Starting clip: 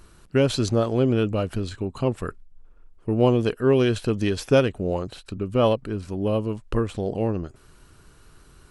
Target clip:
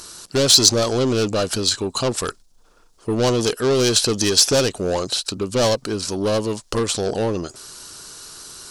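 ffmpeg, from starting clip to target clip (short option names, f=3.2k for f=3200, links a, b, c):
-filter_complex "[0:a]asplit=2[a][b];[b]highpass=f=720:p=1,volume=23dB,asoftclip=type=tanh:threshold=-7.5dB[c];[a][c]amix=inputs=2:normalize=0,lowpass=f=4.1k:p=1,volume=-6dB,highshelf=f=3.5k:t=q:w=1.5:g=14,volume=-3dB"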